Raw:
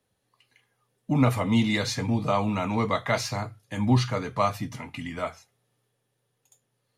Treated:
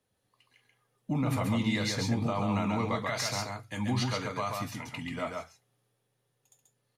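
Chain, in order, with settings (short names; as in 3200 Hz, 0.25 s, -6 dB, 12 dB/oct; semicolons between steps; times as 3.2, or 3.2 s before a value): 3.07–4.96 tilt shelf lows -3 dB; limiter -18.5 dBFS, peak gain reduction 9.5 dB; echo 0.135 s -3.5 dB; gain -3.5 dB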